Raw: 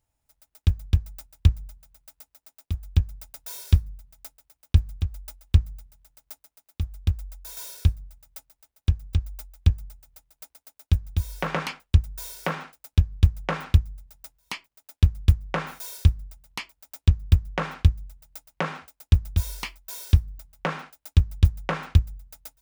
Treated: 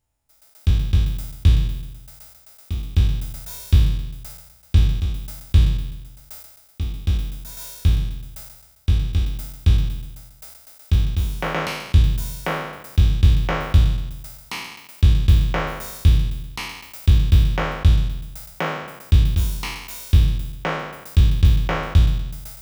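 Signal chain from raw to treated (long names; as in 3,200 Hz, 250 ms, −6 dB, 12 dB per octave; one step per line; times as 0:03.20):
peak hold with a decay on every bin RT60 1.05 s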